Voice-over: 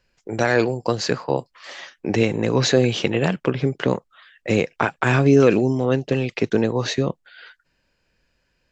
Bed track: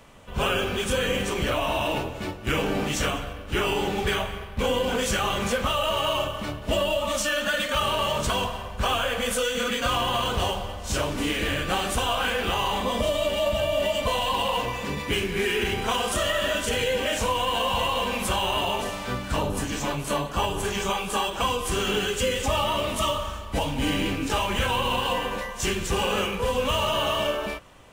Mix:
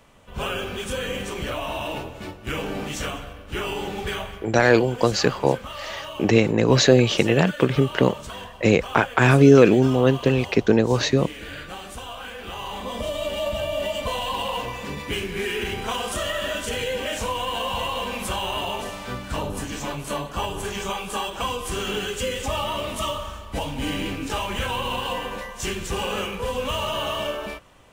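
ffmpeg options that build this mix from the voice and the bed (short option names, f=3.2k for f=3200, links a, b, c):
-filter_complex "[0:a]adelay=4150,volume=2dB[a];[1:a]volume=5.5dB,afade=t=out:st=4.31:d=0.26:silence=0.421697,afade=t=in:st=12.37:d=0.98:silence=0.354813[b];[a][b]amix=inputs=2:normalize=0"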